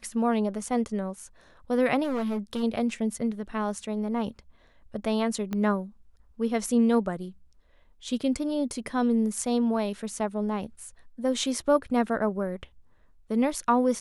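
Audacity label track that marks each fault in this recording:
2.030000	2.640000	clipped -25.5 dBFS
5.530000	5.530000	pop -18 dBFS

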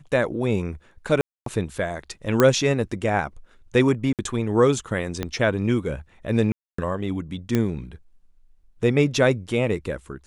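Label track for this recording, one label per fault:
1.210000	1.460000	gap 0.253 s
2.400000	2.400000	pop -4 dBFS
4.130000	4.190000	gap 58 ms
5.230000	5.230000	pop -12 dBFS
6.520000	6.780000	gap 0.264 s
7.550000	7.550000	pop -9 dBFS

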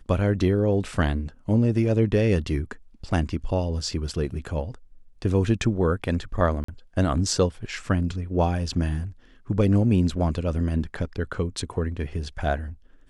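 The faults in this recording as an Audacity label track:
6.640000	6.680000	gap 44 ms

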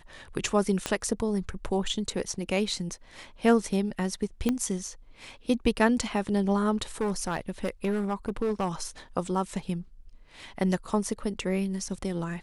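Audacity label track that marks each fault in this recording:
0.860000	0.860000	pop -13 dBFS
4.490000	4.490000	pop -13 dBFS
7.010000	8.830000	clipped -23 dBFS

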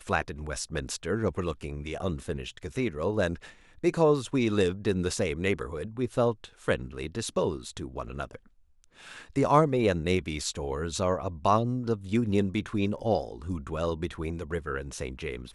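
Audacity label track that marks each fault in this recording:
12.990000	12.990000	gap 3.7 ms

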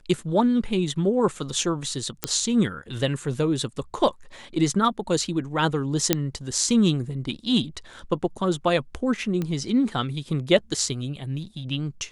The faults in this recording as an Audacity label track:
2.240000	2.240000	pop -5 dBFS
6.130000	6.130000	pop -2 dBFS
9.420000	9.420000	pop -16 dBFS

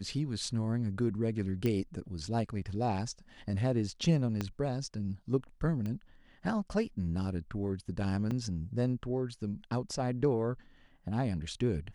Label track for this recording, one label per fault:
1.660000	1.660000	pop -20 dBFS
4.410000	4.410000	pop -19 dBFS
5.860000	5.860000	pop -26 dBFS
8.310000	8.310000	gap 3.7 ms

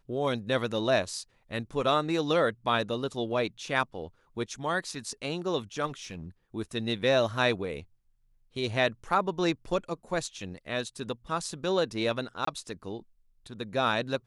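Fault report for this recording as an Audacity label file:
5.860000	6.260000	clipped -33.5 dBFS
12.450000	12.470000	gap 24 ms

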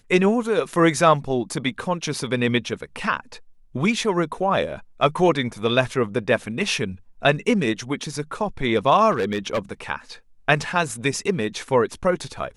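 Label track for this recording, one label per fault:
9.110000	9.590000	clipped -18 dBFS

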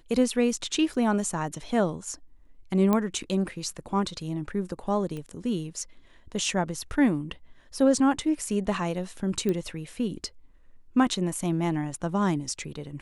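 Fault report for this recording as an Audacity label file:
0.940000	0.940000	gap 3.4 ms
2.930000	2.930000	pop -12 dBFS
5.170000	5.170000	pop -25 dBFS
9.490000	9.490000	pop -16 dBFS

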